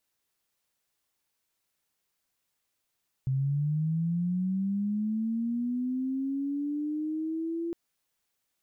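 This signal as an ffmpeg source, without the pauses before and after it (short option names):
-f lavfi -i "aevalsrc='pow(10,(-24.5-5*t/4.46)/20)*sin(2*PI*(130*t+210*t*t/(2*4.46)))':d=4.46:s=44100"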